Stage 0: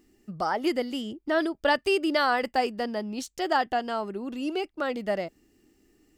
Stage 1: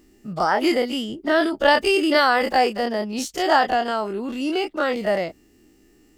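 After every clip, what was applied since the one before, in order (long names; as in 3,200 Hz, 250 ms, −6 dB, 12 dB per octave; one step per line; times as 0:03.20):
every bin's largest magnitude spread in time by 60 ms
level +3.5 dB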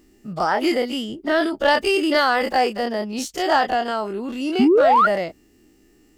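sound drawn into the spectrogram rise, 0:04.59–0:05.07, 220–1,500 Hz −13 dBFS
soft clipping −6 dBFS, distortion −25 dB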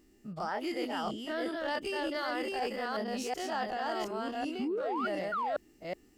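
delay that plays each chunk backwards 371 ms, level −2 dB
reversed playback
downward compressor, threshold −23 dBFS, peak gain reduction 13 dB
reversed playback
level −8.5 dB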